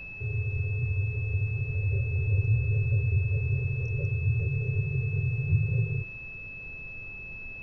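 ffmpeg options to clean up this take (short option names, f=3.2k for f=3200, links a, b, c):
-af "bandreject=f=2.6k:w=30,afftdn=nr=30:nf=-41"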